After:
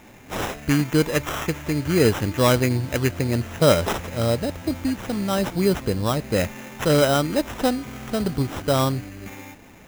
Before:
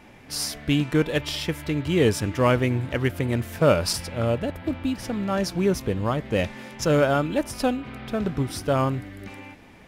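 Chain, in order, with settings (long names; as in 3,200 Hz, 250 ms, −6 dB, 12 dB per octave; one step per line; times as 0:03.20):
sample-rate reduction 4,500 Hz, jitter 0%
level +2 dB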